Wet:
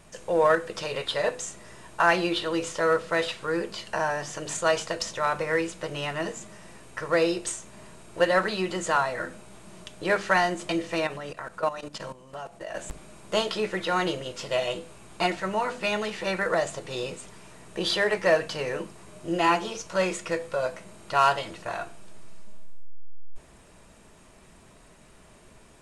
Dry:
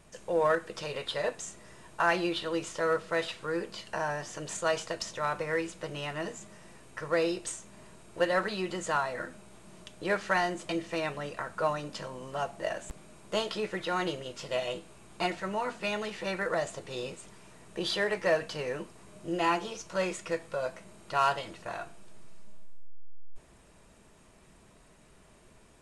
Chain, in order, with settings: hum notches 50/100/150/200/250/300/350/400/450/500 Hz; 11.07–12.75 s: level held to a coarse grid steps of 14 dB; trim +5.5 dB

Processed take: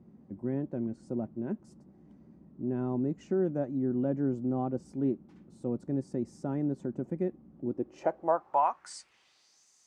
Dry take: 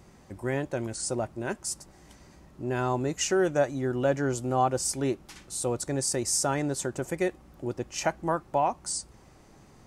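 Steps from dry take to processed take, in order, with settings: band-pass sweep 220 Hz -> 6.6 kHz, 7.64–9.67 s; trim +5 dB

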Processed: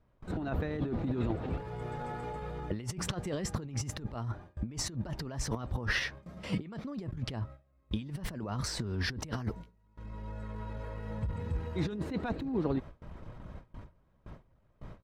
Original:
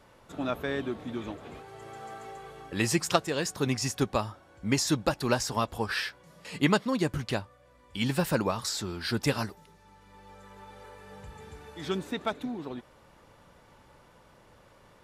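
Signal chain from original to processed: RIAA curve playback; pitch shift +1.5 st; gate with hold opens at -38 dBFS; compressor with a negative ratio -31 dBFS, ratio -1; harmonic-percussive split harmonic -3 dB; trim -2.5 dB

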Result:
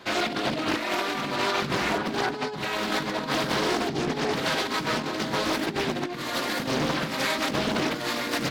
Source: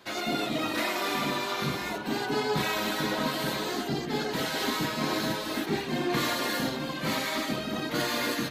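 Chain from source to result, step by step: treble shelf 8.3 kHz -9.5 dB, from 5.53 s -3.5 dB; compressor with a negative ratio -32 dBFS, ratio -0.5; loudspeaker Doppler distortion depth 0.69 ms; trim +5.5 dB

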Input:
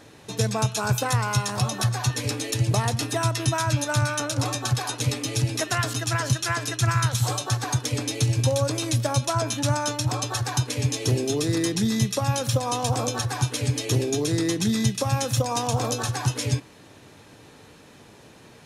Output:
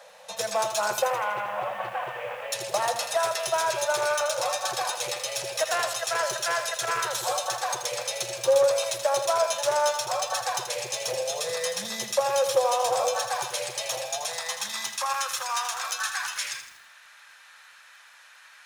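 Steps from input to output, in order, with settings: 1.02–2.52 s: CVSD coder 16 kbps; Chebyshev band-stop 210–500 Hz, order 4; bass shelf 90 Hz -12 dB; hard clipper -22 dBFS, distortion -15 dB; high-pass sweep 500 Hz -> 1.5 kHz, 13.38–15.77 s; bit-crushed delay 81 ms, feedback 55%, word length 8-bit, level -8.5 dB

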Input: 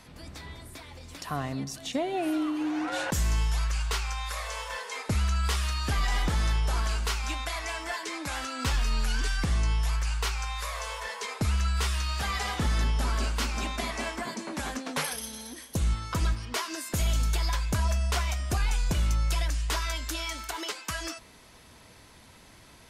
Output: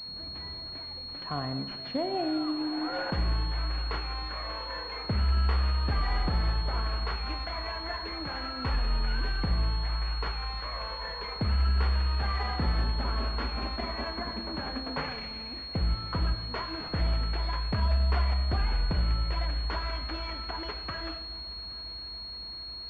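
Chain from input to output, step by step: multi-head delay 274 ms, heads first and third, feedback 74%, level -22.5 dB; Schroeder reverb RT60 0.99 s, combs from 31 ms, DRR 9 dB; class-D stage that switches slowly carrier 4.3 kHz; trim -1.5 dB

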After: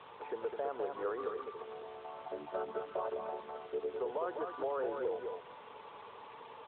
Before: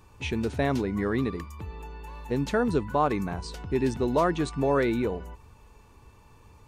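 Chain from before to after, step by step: 1.41–3.96 s: vocoder on a held chord major triad, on D3; Chebyshev band-pass 450–1400 Hz, order 3; peak limiter -24 dBFS, peak gain reduction 10.5 dB; compression 2:1, threshold -57 dBFS, peak gain reduction 15 dB; word length cut 10-bit, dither triangular; distance through air 130 m; delay 206 ms -5 dB; trim +11 dB; AMR-NB 12.2 kbps 8 kHz

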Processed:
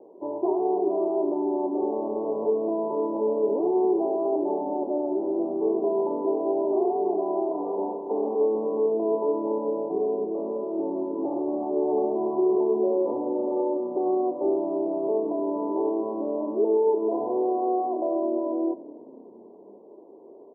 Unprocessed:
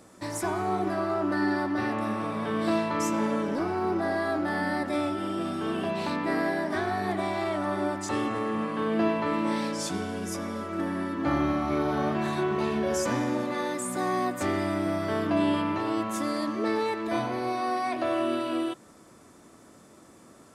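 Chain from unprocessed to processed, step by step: 7.48–8.41 s: comb filter that takes the minimum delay 4.2 ms; steep low-pass 1 kHz 96 dB/octave; peak limiter -23.5 dBFS, peak gain reduction 8.5 dB; resonant high-pass 400 Hz, resonance Q 4.9; frequency-shifting echo 261 ms, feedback 56%, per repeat -32 Hz, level -21.5 dB; reverberation RT60 1.6 s, pre-delay 4 ms, DRR 15 dB

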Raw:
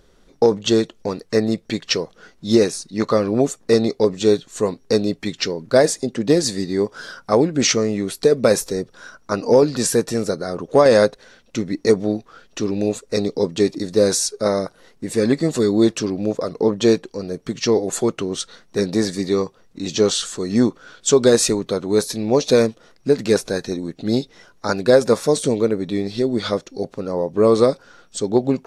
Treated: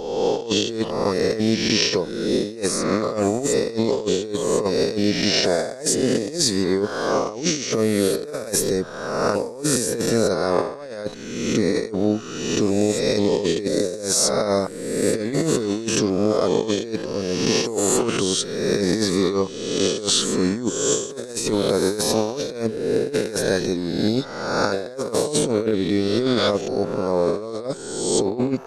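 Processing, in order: reverse spectral sustain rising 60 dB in 1.21 s; compressor with a negative ratio -18 dBFS, ratio -0.5; trim -2.5 dB

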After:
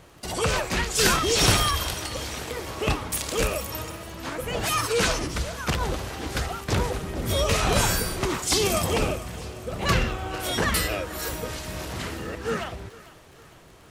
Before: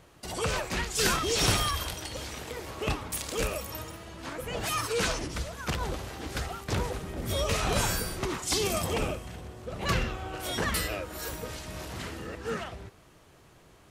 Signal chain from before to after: thinning echo 451 ms, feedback 55%, level -18 dB; crackle 28 per s -46 dBFS; trim +5.5 dB

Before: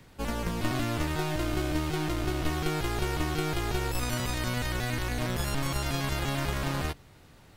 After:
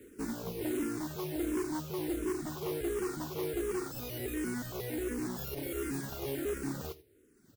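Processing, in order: tracing distortion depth 0.13 ms; peaking EQ 14 kHz +12 dB 1.5 oct; on a send: delay 85 ms -12.5 dB; on the sum: reverb removal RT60 1.2 s; FFT filter 170 Hz 0 dB, 420 Hz +14 dB, 960 Hz -28 dB, 1.4 kHz -3 dB, 4.4 kHz -13 dB, 9.3 kHz -5 dB; saturation -28 dBFS, distortion -8 dB; high-pass 96 Hz 6 dB/octave; modulation noise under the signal 14 dB; barber-pole phaser -1.4 Hz

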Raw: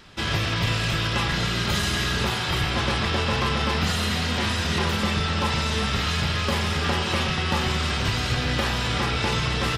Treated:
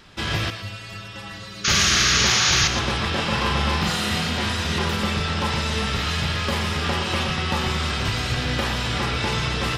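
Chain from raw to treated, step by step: 0.50–1.68 s: inharmonic resonator 98 Hz, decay 0.42 s, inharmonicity 0.008; 1.64–2.68 s: painted sound noise 1.1–6.9 kHz -20 dBFS; 3.10–4.29 s: doubling 42 ms -4 dB; on a send: thinning echo 117 ms, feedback 29%, level -9.5 dB

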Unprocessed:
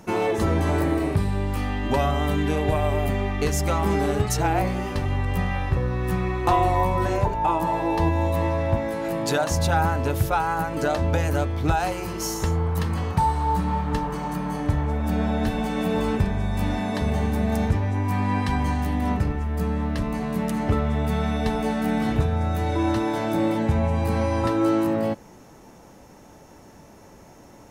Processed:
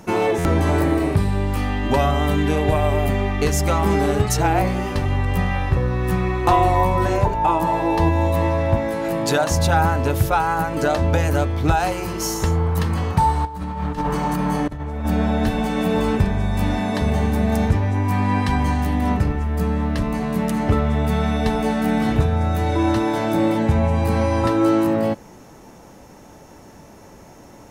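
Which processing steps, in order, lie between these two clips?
13.45–15.05 s: compressor with a negative ratio -27 dBFS, ratio -0.5; buffer glitch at 0.38 s, samples 512, times 5; trim +4 dB

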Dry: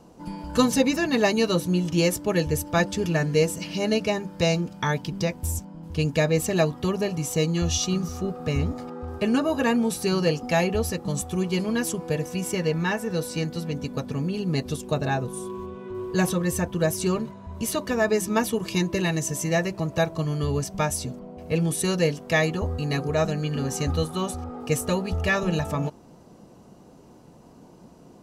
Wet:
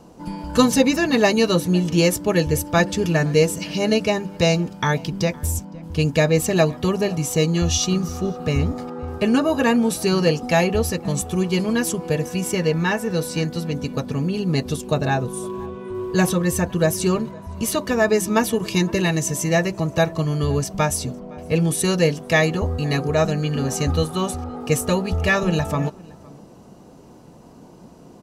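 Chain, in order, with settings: echo from a far wall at 88 m, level -23 dB; trim +4.5 dB

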